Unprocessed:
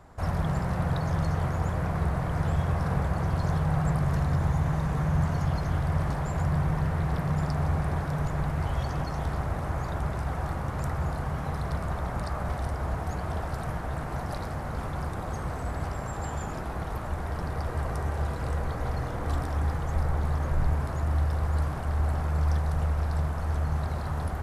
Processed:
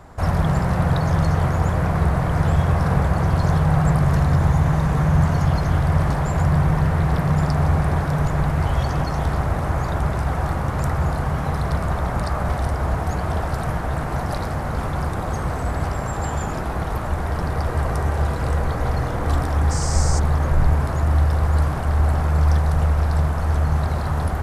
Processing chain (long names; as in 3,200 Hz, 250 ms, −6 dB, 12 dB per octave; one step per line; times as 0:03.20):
0:19.70–0:20.18: noise in a band 4,700–8,600 Hz −40 dBFS
level +8.5 dB